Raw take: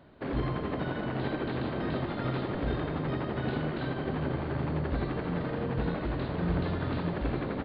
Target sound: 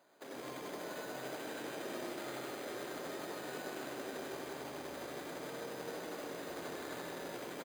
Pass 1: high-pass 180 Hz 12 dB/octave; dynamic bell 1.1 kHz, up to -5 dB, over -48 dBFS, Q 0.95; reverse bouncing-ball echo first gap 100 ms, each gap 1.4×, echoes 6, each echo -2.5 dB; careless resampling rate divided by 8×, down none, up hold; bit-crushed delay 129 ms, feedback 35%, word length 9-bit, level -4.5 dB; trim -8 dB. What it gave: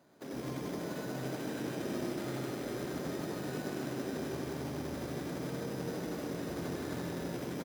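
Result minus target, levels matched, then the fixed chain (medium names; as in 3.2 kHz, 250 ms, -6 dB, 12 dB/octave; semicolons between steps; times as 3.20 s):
250 Hz band +4.5 dB
high-pass 490 Hz 12 dB/octave; dynamic bell 1.1 kHz, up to -5 dB, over -48 dBFS, Q 0.95; reverse bouncing-ball echo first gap 100 ms, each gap 1.4×, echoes 6, each echo -2.5 dB; careless resampling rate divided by 8×, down none, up hold; bit-crushed delay 129 ms, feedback 35%, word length 9-bit, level -4.5 dB; trim -8 dB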